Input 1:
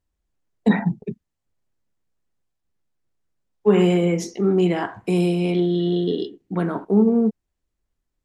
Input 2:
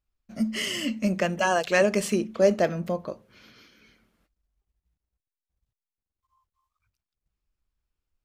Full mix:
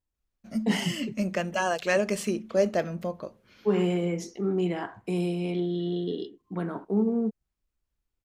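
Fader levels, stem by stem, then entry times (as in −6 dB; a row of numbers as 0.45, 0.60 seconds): −8.5, −3.5 decibels; 0.00, 0.15 seconds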